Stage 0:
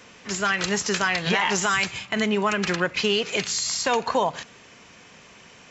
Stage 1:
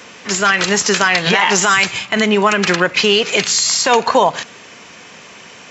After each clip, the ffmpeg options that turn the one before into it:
-af "highpass=f=200:p=1,alimiter=level_in=3.98:limit=0.891:release=50:level=0:latency=1,volume=0.891"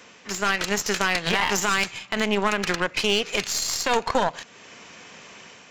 -af "aeval=exprs='0.794*(cos(1*acos(clip(val(0)/0.794,-1,1)))-cos(1*PI/2))+0.282*(cos(2*acos(clip(val(0)/0.794,-1,1)))-cos(2*PI/2))+0.0398*(cos(7*acos(clip(val(0)/0.794,-1,1)))-cos(7*PI/2))':c=same,dynaudnorm=f=110:g=5:m=1.58,volume=0.473"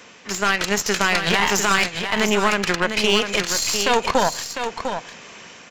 -af "aecho=1:1:701:0.422,volume=1.5"

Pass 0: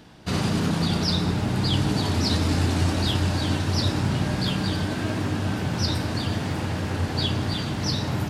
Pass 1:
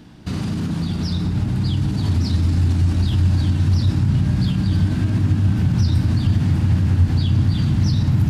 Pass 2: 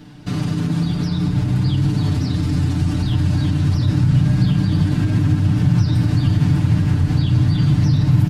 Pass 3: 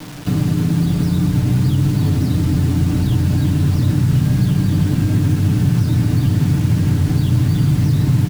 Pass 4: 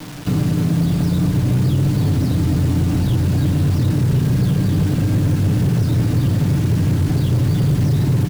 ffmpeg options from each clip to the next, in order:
-af "lowshelf=f=370:t=q:w=1.5:g=6,alimiter=limit=0.15:level=0:latency=1:release=84,asubboost=boost=4:cutoff=170"
-filter_complex "[0:a]aecho=1:1:6.8:0.94,acrossover=split=2900[s0][s1];[s1]alimiter=level_in=2.37:limit=0.0631:level=0:latency=1:release=76,volume=0.422[s2];[s0][s2]amix=inputs=2:normalize=0"
-filter_complex "[0:a]acrossover=split=120|700|1400|3000[s0][s1][s2][s3][s4];[s0]acompressor=threshold=0.0501:ratio=4[s5];[s1]acompressor=threshold=0.0631:ratio=4[s6];[s2]acompressor=threshold=0.00224:ratio=4[s7];[s3]acompressor=threshold=0.00282:ratio=4[s8];[s4]acompressor=threshold=0.00251:ratio=4[s9];[s5][s6][s7][s8][s9]amix=inputs=5:normalize=0,acrusher=bits=6:mix=0:aa=0.000001,asplit=4[s10][s11][s12][s13];[s11]adelay=173,afreqshift=120,volume=0.112[s14];[s12]adelay=346,afreqshift=240,volume=0.038[s15];[s13]adelay=519,afreqshift=360,volume=0.013[s16];[s10][s14][s15][s16]amix=inputs=4:normalize=0,volume=2.24"
-af "asoftclip=type=hard:threshold=0.251"

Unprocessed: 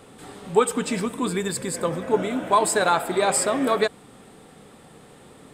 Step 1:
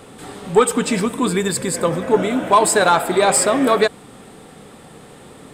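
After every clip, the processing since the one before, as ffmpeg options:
-af "acontrast=71"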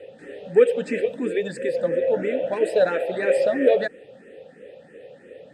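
-filter_complex "[0:a]asplit=3[s0][s1][s2];[s0]bandpass=f=530:t=q:w=8,volume=1[s3];[s1]bandpass=f=1840:t=q:w=8,volume=0.501[s4];[s2]bandpass=f=2480:t=q:w=8,volume=0.355[s5];[s3][s4][s5]amix=inputs=3:normalize=0,lowshelf=f=290:g=11.5,asplit=2[s6][s7];[s7]afreqshift=3[s8];[s6][s8]amix=inputs=2:normalize=1,volume=2.37"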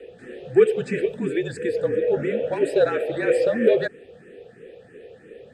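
-af "afreqshift=-44"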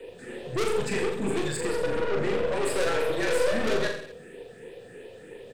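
-af "aeval=exprs='(tanh(20*val(0)+0.5)-tanh(0.5))/20':c=same,crystalizer=i=2.5:c=0,aecho=1:1:40|84|132.4|185.6|244.2:0.631|0.398|0.251|0.158|0.1"

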